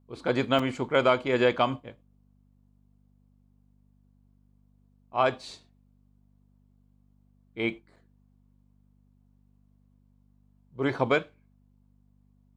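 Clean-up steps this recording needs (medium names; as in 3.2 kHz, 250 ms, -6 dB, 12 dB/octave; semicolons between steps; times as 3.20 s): de-hum 49.4 Hz, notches 5; interpolate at 0.59/7.96 s, 4.2 ms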